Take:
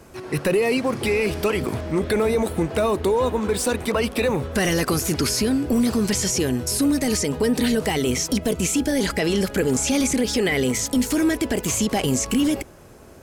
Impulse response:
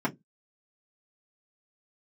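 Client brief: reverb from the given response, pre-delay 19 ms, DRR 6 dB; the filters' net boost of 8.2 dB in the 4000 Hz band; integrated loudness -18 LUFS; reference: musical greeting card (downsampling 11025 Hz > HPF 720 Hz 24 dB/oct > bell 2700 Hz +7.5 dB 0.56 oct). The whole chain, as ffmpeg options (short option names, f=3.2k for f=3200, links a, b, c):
-filter_complex "[0:a]equalizer=f=4k:t=o:g=7,asplit=2[a][b];[1:a]atrim=start_sample=2205,adelay=19[c];[b][c]afir=irnorm=-1:irlink=0,volume=-15.5dB[d];[a][d]amix=inputs=2:normalize=0,aresample=11025,aresample=44100,highpass=f=720:w=0.5412,highpass=f=720:w=1.3066,equalizer=f=2.7k:t=o:w=0.56:g=7.5,volume=5dB"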